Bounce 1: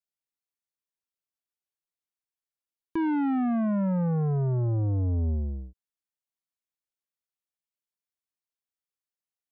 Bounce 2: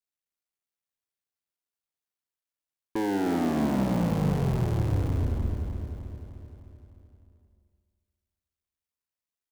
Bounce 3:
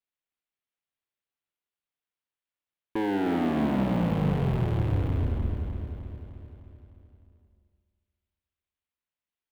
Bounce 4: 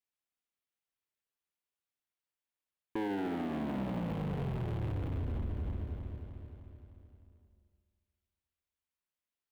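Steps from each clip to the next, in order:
cycle switcher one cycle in 3, muted; on a send: feedback delay 304 ms, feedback 58%, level -7 dB; on the sum: spring tank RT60 2 s, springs 40/45 ms, chirp 75 ms, DRR 8 dB
resonant high shelf 4.2 kHz -9 dB, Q 1.5
peak limiter -26.5 dBFS, peak gain reduction 10 dB; trim -3 dB

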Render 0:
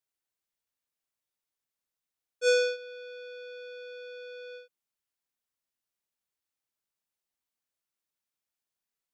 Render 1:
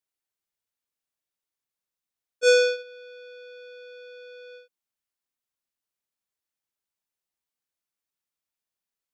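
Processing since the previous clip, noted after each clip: gate -39 dBFS, range -7 dB; trim +6 dB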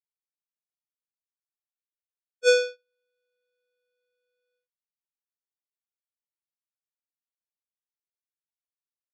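upward expansion 2.5:1, over -39 dBFS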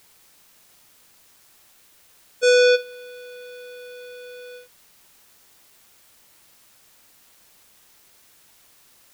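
level flattener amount 100%; trim +1 dB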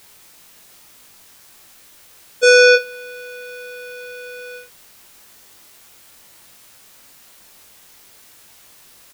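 doubling 21 ms -5 dB; trim +6.5 dB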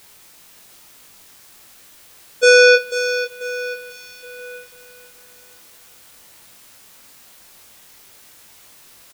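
feedback delay 491 ms, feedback 36%, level -10 dB

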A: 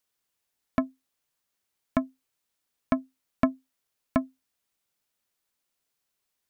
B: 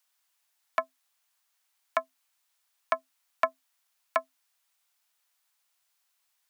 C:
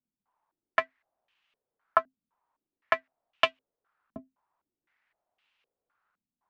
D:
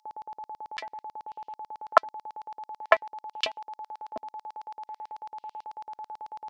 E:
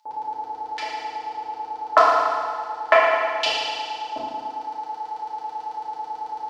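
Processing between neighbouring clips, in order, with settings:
high-pass 710 Hz 24 dB/octave; trim +5.5 dB
square wave that keeps the level; step-sequenced low-pass 3.9 Hz 230–2800 Hz; trim -4 dB
whistle 860 Hz -41 dBFS; LFO high-pass square 9.1 Hz 470–4800 Hz; trim +3.5 dB
FDN reverb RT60 1.9 s, low-frequency decay 1×, high-frequency decay 1×, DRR -8.5 dB

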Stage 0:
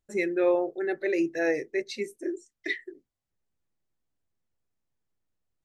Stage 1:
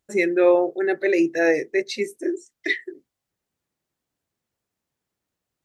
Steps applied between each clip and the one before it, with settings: high-pass 140 Hz 6 dB/octave; trim +7.5 dB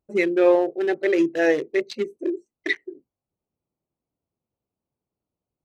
local Wiener filter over 25 samples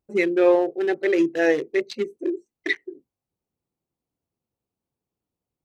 band-stop 610 Hz, Q 12

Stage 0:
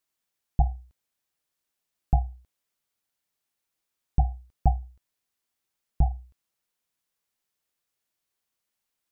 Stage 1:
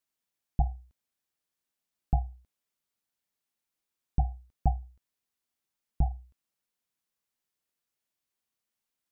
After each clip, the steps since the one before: peaking EQ 230 Hz +3.5 dB 0.77 oct; trim -4.5 dB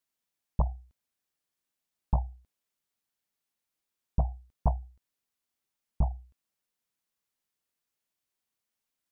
loudspeaker Doppler distortion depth 0.9 ms

